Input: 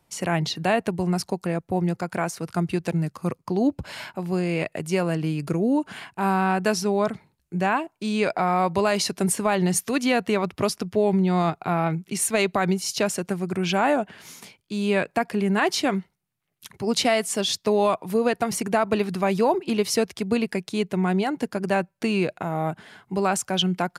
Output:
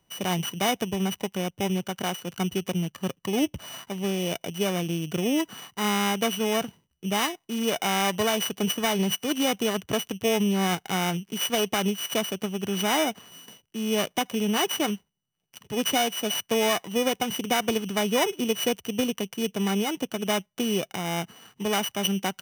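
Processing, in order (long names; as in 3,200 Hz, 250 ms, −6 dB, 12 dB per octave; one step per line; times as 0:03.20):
samples sorted by size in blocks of 16 samples
speed change +7%
level −3 dB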